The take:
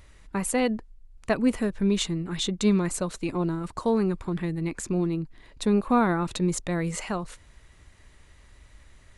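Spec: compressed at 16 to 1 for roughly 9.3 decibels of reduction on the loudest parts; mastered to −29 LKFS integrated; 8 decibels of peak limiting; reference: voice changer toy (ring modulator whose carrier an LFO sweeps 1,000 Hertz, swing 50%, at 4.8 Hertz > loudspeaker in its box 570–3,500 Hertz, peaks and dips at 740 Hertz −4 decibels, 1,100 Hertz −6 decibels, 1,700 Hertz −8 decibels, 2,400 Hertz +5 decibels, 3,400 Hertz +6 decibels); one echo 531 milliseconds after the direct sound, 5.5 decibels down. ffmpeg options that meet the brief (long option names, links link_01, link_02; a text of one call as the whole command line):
ffmpeg -i in.wav -af "acompressor=threshold=-26dB:ratio=16,alimiter=limit=-24dB:level=0:latency=1,aecho=1:1:531:0.531,aeval=exprs='val(0)*sin(2*PI*1000*n/s+1000*0.5/4.8*sin(2*PI*4.8*n/s))':channel_layout=same,highpass=570,equalizer=frequency=740:width_type=q:width=4:gain=-4,equalizer=frequency=1100:width_type=q:width=4:gain=-6,equalizer=frequency=1700:width_type=q:width=4:gain=-8,equalizer=frequency=2400:width_type=q:width=4:gain=5,equalizer=frequency=3400:width_type=q:width=4:gain=6,lowpass=frequency=3500:width=0.5412,lowpass=frequency=3500:width=1.3066,volume=10.5dB" out.wav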